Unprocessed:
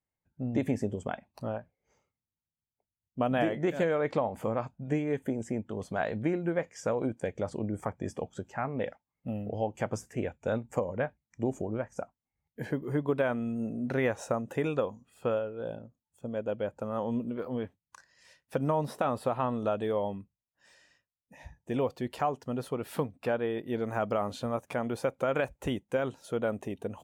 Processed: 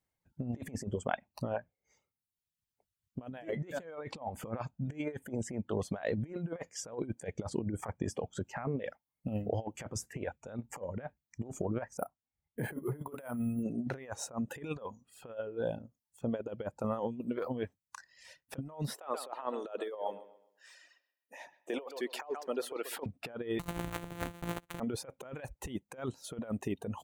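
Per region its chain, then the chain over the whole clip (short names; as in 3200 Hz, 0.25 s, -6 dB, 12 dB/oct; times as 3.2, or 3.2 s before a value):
11.97–13.63 air absorption 230 m + doubler 33 ms -11 dB + careless resampling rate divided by 4×, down filtered, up hold
18.94–23.06 HPF 360 Hz 24 dB/oct + analogue delay 0.129 s, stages 4096, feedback 32%, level -10 dB
23.59–24.8 sample sorter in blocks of 256 samples + bell 5100 Hz -11 dB 0.46 oct
whole clip: reverb removal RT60 0.95 s; negative-ratio compressor -36 dBFS, ratio -0.5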